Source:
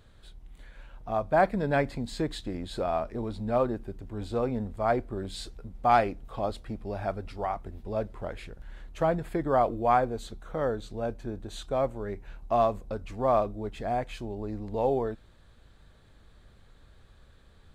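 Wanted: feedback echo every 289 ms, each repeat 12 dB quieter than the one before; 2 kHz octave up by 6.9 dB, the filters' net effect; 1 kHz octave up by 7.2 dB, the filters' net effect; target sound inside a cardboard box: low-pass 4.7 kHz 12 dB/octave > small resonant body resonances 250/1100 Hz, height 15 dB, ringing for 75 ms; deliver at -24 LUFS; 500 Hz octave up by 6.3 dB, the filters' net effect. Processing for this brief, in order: low-pass 4.7 kHz 12 dB/octave; peaking EQ 500 Hz +5 dB; peaking EQ 1 kHz +7 dB; peaking EQ 2 kHz +6 dB; feedback delay 289 ms, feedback 25%, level -12 dB; small resonant body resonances 250/1100 Hz, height 15 dB, ringing for 75 ms; trim -3 dB

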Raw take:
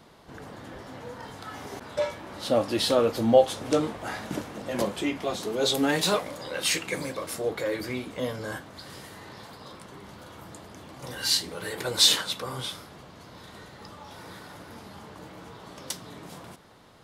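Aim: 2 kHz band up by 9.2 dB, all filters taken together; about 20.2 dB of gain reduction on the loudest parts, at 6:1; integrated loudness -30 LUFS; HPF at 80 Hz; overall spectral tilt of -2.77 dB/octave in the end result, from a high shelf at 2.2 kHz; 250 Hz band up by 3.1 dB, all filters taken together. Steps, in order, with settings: high-pass 80 Hz; peaking EQ 250 Hz +3.5 dB; peaking EQ 2 kHz +8.5 dB; treble shelf 2.2 kHz +5.5 dB; compression 6:1, threshold -32 dBFS; trim +6 dB

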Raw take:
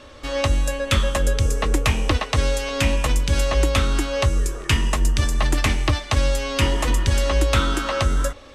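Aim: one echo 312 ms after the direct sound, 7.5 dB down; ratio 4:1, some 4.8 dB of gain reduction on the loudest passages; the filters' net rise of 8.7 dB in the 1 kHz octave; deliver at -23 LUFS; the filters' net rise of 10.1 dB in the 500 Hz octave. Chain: peaking EQ 500 Hz +9 dB; peaking EQ 1 kHz +8.5 dB; compression 4:1, threshold -16 dBFS; delay 312 ms -7.5 dB; trim -3 dB

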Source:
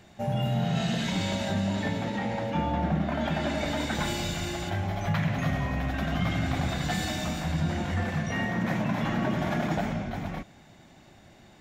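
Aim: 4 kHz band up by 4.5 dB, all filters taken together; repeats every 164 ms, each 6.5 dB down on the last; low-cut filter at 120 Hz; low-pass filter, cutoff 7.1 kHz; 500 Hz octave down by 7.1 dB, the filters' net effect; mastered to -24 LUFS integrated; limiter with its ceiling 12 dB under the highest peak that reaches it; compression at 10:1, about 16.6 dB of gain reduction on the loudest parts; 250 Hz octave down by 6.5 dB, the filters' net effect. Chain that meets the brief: high-pass 120 Hz; low-pass 7.1 kHz; peaking EQ 250 Hz -7 dB; peaking EQ 500 Hz -8.5 dB; peaking EQ 4 kHz +6 dB; compression 10:1, threshold -45 dBFS; peak limiter -46.5 dBFS; feedback delay 164 ms, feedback 47%, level -6.5 dB; trim +29 dB

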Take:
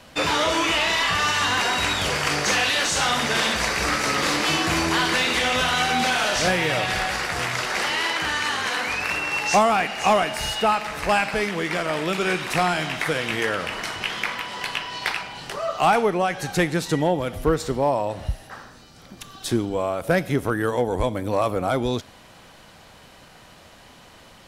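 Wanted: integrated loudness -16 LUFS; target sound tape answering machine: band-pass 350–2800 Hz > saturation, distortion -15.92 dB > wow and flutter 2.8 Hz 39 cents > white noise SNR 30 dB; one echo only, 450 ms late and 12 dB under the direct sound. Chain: band-pass 350–2800 Hz; delay 450 ms -12 dB; saturation -16 dBFS; wow and flutter 2.8 Hz 39 cents; white noise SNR 30 dB; trim +9.5 dB

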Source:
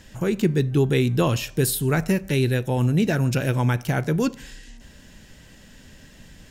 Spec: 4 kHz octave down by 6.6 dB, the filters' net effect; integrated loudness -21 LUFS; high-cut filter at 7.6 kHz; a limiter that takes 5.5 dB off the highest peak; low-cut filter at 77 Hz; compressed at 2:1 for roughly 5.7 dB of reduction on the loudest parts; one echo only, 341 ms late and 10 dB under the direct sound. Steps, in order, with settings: high-pass 77 Hz; low-pass 7.6 kHz; peaking EQ 4 kHz -8.5 dB; compression 2:1, threshold -26 dBFS; peak limiter -19.5 dBFS; delay 341 ms -10 dB; trim +8.5 dB

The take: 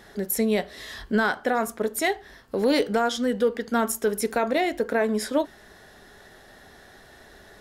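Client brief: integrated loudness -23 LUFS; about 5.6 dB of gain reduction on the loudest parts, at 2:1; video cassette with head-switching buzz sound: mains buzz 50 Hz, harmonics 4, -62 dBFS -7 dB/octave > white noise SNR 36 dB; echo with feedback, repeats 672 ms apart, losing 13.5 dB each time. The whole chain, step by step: compression 2:1, threshold -28 dBFS; feedback delay 672 ms, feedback 21%, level -13.5 dB; mains buzz 50 Hz, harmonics 4, -62 dBFS -7 dB/octave; white noise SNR 36 dB; trim +6.5 dB

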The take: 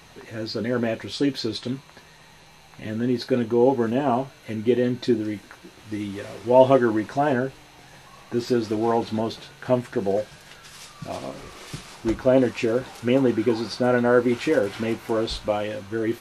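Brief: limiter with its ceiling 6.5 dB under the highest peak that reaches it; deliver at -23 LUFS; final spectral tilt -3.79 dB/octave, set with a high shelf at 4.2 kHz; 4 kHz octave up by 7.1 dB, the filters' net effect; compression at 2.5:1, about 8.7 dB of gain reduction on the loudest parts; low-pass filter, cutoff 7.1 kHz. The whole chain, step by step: low-pass 7.1 kHz; peaking EQ 4 kHz +5.5 dB; treble shelf 4.2 kHz +6 dB; compression 2.5:1, threshold -23 dBFS; trim +6.5 dB; peak limiter -11 dBFS

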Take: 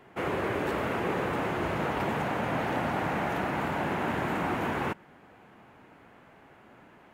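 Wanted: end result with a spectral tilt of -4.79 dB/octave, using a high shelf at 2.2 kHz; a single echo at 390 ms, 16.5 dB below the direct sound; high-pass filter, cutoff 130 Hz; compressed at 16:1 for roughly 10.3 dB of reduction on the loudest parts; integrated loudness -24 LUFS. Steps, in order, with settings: high-pass 130 Hz; treble shelf 2.2 kHz -4.5 dB; compression 16:1, threshold -37 dBFS; delay 390 ms -16.5 dB; trim +17 dB

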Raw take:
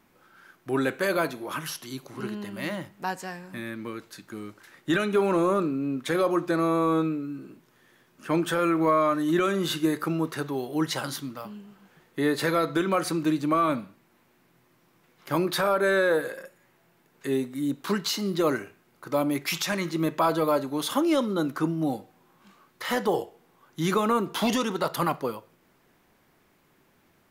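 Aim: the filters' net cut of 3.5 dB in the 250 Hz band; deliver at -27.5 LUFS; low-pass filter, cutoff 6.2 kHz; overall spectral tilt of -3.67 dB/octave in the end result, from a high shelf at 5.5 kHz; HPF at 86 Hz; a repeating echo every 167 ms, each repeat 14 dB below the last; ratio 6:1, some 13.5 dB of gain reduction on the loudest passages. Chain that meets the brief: high-pass 86 Hz; low-pass 6.2 kHz; peaking EQ 250 Hz -5 dB; treble shelf 5.5 kHz -4 dB; compression 6:1, threshold -35 dBFS; feedback delay 167 ms, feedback 20%, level -14 dB; trim +11.5 dB

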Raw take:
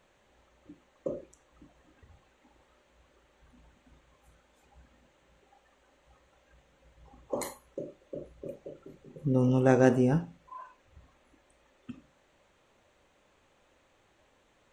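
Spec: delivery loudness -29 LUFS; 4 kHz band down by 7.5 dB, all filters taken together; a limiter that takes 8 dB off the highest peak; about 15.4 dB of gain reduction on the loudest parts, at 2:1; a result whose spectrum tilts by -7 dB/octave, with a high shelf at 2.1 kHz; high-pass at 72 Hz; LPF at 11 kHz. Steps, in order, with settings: high-pass 72 Hz; low-pass 11 kHz; treble shelf 2.1 kHz -7.5 dB; peaking EQ 4 kHz -3 dB; compression 2:1, threshold -46 dBFS; trim +19 dB; peak limiter -14 dBFS

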